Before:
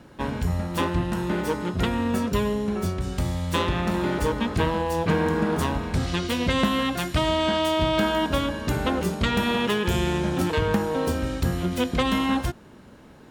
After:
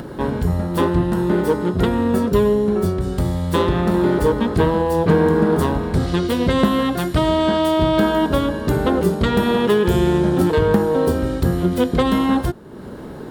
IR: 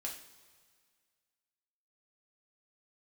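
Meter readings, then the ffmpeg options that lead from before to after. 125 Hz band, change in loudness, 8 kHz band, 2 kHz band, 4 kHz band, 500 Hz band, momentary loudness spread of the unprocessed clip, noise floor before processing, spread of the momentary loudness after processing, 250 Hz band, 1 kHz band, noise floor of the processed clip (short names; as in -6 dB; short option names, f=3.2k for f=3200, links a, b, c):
+6.0 dB, +6.5 dB, +0.5 dB, +1.5 dB, 0.0 dB, +9.0 dB, 5 LU, -48 dBFS, 5 LU, +7.5 dB, +4.5 dB, -33 dBFS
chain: -af "acompressor=mode=upward:threshold=-30dB:ratio=2.5,equalizer=f=160:t=o:w=0.67:g=3,equalizer=f=400:t=o:w=0.67:g=7,equalizer=f=2.5k:t=o:w=0.67:g=-8,equalizer=f=6.3k:t=o:w=0.67:g=-7,volume=4.5dB"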